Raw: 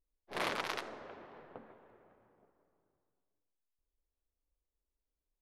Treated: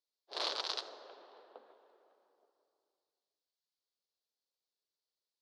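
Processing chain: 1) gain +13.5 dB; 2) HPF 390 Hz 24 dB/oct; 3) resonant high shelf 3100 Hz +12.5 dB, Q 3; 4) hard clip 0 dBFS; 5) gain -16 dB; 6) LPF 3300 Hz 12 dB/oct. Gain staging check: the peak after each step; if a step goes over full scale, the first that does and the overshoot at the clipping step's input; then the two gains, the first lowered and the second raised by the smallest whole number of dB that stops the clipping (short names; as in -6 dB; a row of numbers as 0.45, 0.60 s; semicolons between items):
-5.5, -6.0, +3.5, 0.0, -16.0, -19.5 dBFS; step 3, 3.5 dB; step 1 +9.5 dB, step 5 -12 dB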